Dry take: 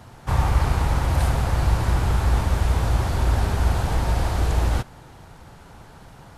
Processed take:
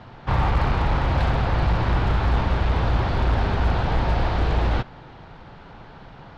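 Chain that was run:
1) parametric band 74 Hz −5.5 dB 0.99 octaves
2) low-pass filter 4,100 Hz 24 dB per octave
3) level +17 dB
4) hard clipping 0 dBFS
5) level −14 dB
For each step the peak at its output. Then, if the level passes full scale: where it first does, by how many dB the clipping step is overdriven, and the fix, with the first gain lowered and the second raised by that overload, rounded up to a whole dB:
−10.0, −10.0, +7.0, 0.0, −14.0 dBFS
step 3, 7.0 dB
step 3 +10 dB, step 5 −7 dB

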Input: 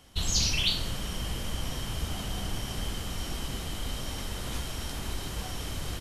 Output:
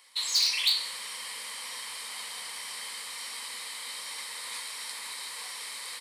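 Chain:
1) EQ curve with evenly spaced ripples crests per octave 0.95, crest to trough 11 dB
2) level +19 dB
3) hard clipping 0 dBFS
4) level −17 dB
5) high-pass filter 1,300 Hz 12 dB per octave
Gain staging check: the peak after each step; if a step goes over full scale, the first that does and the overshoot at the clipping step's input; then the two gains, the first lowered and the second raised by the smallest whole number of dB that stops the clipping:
−12.0, +7.0, 0.0, −17.0, −13.5 dBFS
step 2, 7.0 dB
step 2 +12 dB, step 4 −10 dB

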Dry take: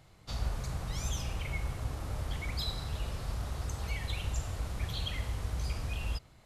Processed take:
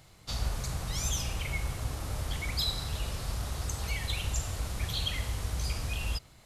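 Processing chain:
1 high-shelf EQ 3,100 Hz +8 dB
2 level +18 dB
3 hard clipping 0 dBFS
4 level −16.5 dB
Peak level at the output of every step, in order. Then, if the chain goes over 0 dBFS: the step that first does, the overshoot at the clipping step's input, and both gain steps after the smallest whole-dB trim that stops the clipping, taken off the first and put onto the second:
−19.5, −1.5, −1.5, −18.0 dBFS
no step passes full scale

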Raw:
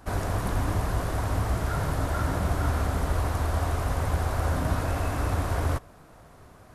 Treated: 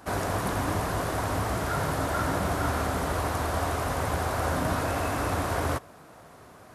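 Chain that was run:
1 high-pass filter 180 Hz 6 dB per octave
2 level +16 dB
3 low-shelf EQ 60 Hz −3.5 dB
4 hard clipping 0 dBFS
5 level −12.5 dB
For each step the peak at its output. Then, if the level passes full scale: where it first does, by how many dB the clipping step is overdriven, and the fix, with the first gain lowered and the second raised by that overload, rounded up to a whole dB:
−18.0, −2.0, −2.5, −2.5, −15.0 dBFS
no step passes full scale

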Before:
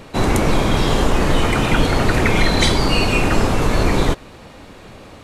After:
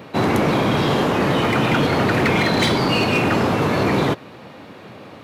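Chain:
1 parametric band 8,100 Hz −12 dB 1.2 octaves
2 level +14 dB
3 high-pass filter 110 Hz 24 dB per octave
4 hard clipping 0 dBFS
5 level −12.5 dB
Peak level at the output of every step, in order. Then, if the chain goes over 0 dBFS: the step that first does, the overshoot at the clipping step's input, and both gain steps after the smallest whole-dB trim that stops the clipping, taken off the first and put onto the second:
−2.5, +11.5, +8.5, 0.0, −12.5 dBFS
step 2, 8.5 dB
step 2 +5 dB, step 5 −3.5 dB

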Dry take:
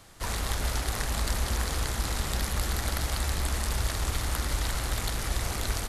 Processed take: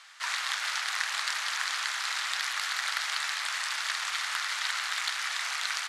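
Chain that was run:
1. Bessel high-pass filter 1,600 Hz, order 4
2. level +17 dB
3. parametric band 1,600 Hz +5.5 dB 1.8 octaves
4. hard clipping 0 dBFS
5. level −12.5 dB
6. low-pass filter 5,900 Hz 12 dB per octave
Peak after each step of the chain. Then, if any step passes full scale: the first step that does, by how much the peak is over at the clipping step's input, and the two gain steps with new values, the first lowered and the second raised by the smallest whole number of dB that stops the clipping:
−14.0, +3.0, +3.0, 0.0, −12.5, −13.5 dBFS
step 2, 3.0 dB
step 2 +14 dB, step 5 −9.5 dB

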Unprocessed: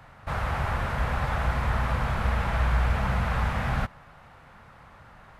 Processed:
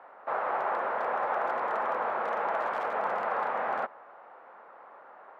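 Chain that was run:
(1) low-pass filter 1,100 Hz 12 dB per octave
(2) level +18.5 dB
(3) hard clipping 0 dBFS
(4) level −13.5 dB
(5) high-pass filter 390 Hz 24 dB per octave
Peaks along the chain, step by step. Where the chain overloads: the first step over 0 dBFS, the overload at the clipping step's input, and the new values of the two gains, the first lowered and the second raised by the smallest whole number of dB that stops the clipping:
−14.0, +4.5, 0.0, −13.5, −18.5 dBFS
step 2, 4.5 dB
step 2 +13.5 dB, step 4 −8.5 dB

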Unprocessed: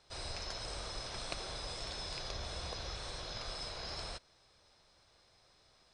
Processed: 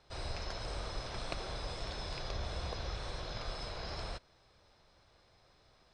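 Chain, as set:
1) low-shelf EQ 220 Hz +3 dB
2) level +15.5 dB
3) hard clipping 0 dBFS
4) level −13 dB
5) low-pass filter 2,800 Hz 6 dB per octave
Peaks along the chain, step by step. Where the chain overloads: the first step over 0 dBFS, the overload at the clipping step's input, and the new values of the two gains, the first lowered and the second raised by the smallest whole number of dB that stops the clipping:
−19.5, −4.0, −4.0, −17.0, −19.0 dBFS
no step passes full scale

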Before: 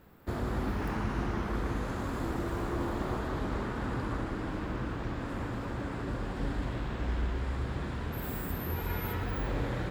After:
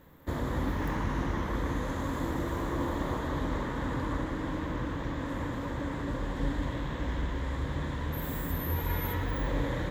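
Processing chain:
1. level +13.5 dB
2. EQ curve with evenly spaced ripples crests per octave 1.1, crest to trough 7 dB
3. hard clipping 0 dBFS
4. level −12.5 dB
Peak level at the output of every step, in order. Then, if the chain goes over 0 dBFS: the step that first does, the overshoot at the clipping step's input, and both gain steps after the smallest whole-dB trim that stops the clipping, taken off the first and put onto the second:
−7.0, −5.0, −5.0, −17.5 dBFS
no step passes full scale

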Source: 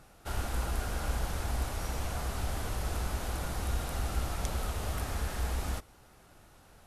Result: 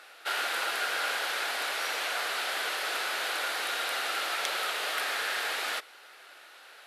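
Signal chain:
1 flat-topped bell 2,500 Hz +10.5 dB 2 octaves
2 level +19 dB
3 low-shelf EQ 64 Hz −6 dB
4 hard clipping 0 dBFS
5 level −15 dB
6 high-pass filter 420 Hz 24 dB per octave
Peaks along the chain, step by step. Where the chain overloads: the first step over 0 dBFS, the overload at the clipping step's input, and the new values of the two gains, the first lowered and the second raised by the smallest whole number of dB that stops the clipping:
−16.0, +3.0, +3.5, 0.0, −15.0, −12.0 dBFS
step 2, 3.5 dB
step 2 +15 dB, step 5 −11 dB

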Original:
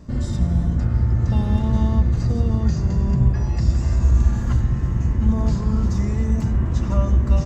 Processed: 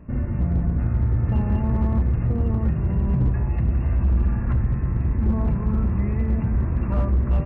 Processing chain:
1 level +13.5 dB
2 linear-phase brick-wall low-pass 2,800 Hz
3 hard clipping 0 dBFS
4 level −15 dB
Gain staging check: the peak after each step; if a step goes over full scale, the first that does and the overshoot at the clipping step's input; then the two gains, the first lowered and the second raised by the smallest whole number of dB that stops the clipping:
+8.0, +8.0, 0.0, −15.0 dBFS
step 1, 8.0 dB
step 1 +5.5 dB, step 4 −7 dB

